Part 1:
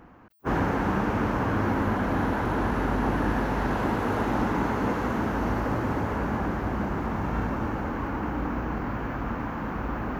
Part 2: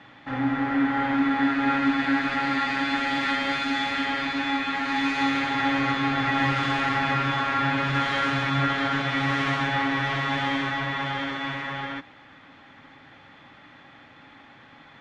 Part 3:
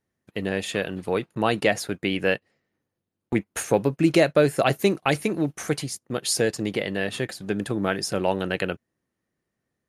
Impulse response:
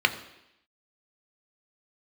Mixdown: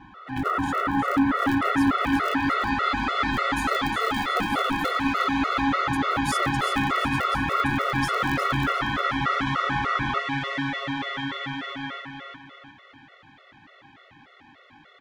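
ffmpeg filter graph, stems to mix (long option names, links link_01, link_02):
-filter_complex "[0:a]lowpass=frequency=1300:width_type=q:width=14,volume=0dB[link_01];[1:a]volume=-1dB,asplit=2[link_02][link_03];[link_03]volume=-4dB[link_04];[2:a]aeval=exprs='val(0)*sgn(sin(2*PI*120*n/s))':channel_layout=same,volume=-2dB,asplit=3[link_05][link_06][link_07];[link_05]atrim=end=4.91,asetpts=PTS-STARTPTS,afade=type=out:start_time=4.906:duration=0.004:curve=hsin[link_08];[link_06]atrim=start=4.91:end=5.93,asetpts=PTS-STARTPTS,volume=0[link_09];[link_07]atrim=start=5.93,asetpts=PTS-STARTPTS,afade=type=in:duration=0.004:curve=hsin[link_10];[link_08][link_09][link_10]concat=n=3:v=0:a=1,asplit=2[link_11][link_12];[link_12]volume=-13dB[link_13];[link_01][link_11]amix=inputs=2:normalize=0,acompressor=threshold=-21dB:ratio=6,volume=0dB[link_14];[link_04][link_13]amix=inputs=2:normalize=0,aecho=0:1:358|716|1074|1432|1790|2148:1|0.4|0.16|0.064|0.0256|0.0102[link_15];[link_02][link_14][link_15]amix=inputs=3:normalize=0,afftfilt=real='re*gt(sin(2*PI*3.4*pts/sr)*(1-2*mod(floor(b*sr/1024/370),2)),0)':imag='im*gt(sin(2*PI*3.4*pts/sr)*(1-2*mod(floor(b*sr/1024/370),2)),0)':win_size=1024:overlap=0.75"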